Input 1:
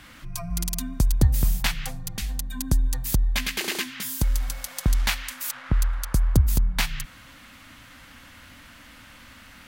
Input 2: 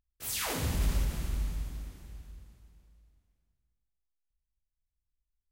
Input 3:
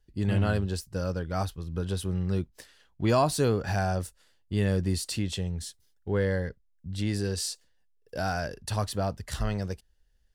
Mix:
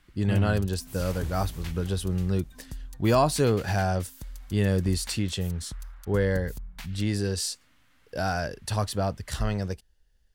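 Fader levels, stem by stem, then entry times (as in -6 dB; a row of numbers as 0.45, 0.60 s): -18.0, -10.5, +2.0 dB; 0.00, 0.65, 0.00 s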